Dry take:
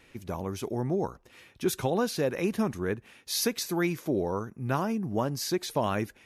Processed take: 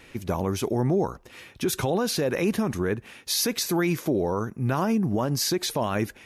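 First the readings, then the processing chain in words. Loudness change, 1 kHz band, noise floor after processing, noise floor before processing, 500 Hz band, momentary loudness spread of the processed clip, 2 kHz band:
+4.5 dB, +3.0 dB, −51 dBFS, −59 dBFS, +3.5 dB, 6 LU, +3.5 dB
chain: brickwall limiter −23.5 dBFS, peak gain reduction 10 dB
level +8 dB

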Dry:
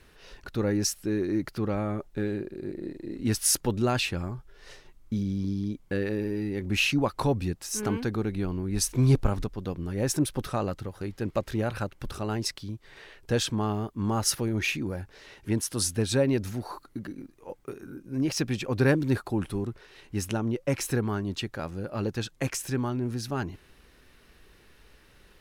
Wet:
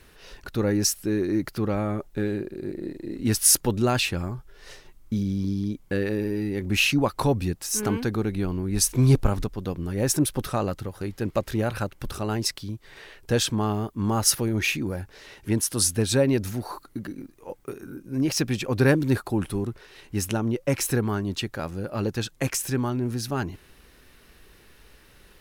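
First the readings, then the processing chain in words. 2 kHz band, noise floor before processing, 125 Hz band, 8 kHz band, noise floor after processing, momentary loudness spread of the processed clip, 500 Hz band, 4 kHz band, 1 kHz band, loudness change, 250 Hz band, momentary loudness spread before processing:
+3.5 dB, −58 dBFS, +3.0 dB, +6.0 dB, −55 dBFS, 14 LU, +3.0 dB, +4.0 dB, +3.0 dB, +3.5 dB, +3.0 dB, 14 LU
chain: high-shelf EQ 10,000 Hz +8 dB
level +3 dB

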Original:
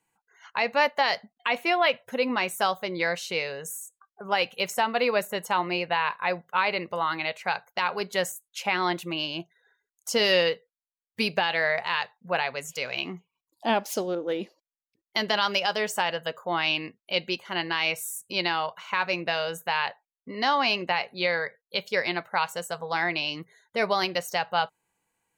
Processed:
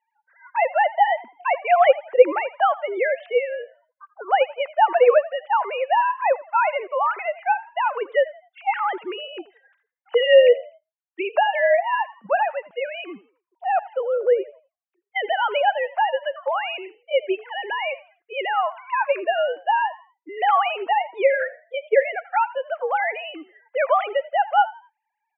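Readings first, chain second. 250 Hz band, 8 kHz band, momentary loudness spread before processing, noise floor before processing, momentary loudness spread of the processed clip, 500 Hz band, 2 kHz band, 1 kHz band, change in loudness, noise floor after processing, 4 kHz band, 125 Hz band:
−5.5 dB, below −40 dB, 9 LU, below −85 dBFS, 13 LU, +9.0 dB, +1.0 dB, +7.5 dB, +5.5 dB, −82 dBFS, −5.5 dB, below −25 dB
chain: three sine waves on the formant tracks
three-way crossover with the lows and the highs turned down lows −21 dB, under 240 Hz, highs −22 dB, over 2,300 Hz
echo with shifted repeats 83 ms, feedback 31%, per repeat +52 Hz, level −19 dB
level +7 dB

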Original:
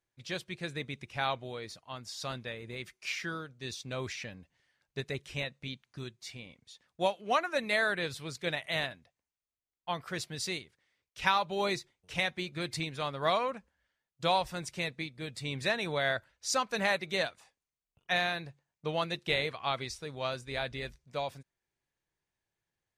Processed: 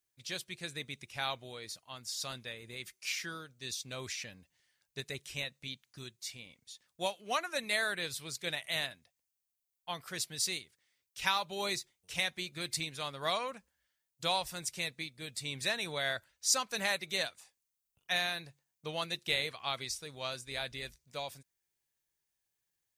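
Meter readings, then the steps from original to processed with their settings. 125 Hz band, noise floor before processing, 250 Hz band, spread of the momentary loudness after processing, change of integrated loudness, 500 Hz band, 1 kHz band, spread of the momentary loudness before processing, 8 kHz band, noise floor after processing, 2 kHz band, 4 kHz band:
−7.0 dB, below −85 dBFS, −7.0 dB, 12 LU, −2.0 dB, −6.5 dB, −5.5 dB, 13 LU, +5.5 dB, below −85 dBFS, −3.0 dB, +1.0 dB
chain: first-order pre-emphasis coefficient 0.8
level +7 dB

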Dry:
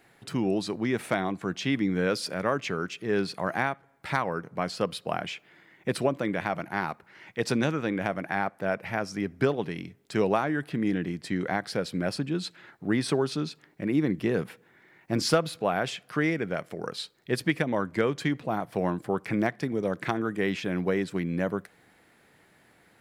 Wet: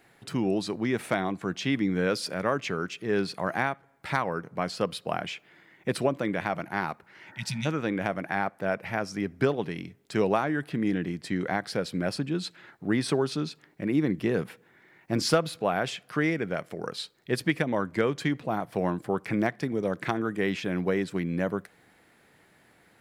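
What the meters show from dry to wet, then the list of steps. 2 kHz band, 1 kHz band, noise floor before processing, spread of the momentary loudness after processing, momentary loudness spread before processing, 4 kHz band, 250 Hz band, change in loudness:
0.0 dB, 0.0 dB, −61 dBFS, 8 LU, 7 LU, 0.0 dB, 0.0 dB, 0.0 dB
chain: healed spectral selection 0:07.31–0:07.63, 220–1,900 Hz before

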